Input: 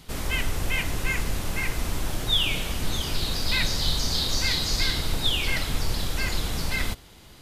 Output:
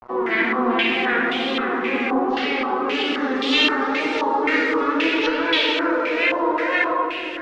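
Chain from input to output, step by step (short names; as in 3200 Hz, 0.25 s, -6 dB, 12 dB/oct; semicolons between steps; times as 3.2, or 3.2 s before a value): vocoder on a gliding note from A#3, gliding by +7 st; in parallel at 0 dB: compressor 6:1, threshold -37 dBFS, peak gain reduction 15 dB; on the sum: harmoniser +7 st -1 dB; wow and flutter 120 cents; shoebox room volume 130 m³, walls hard, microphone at 0.61 m; soft clip -10.5 dBFS, distortion -22 dB; notches 50/100/150/200/250/300/350/400 Hz; bit-crush 6-bit; flange 0.73 Hz, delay 1.2 ms, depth 3.1 ms, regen +71%; stepped low-pass 3.8 Hz 990–3300 Hz; gain +2.5 dB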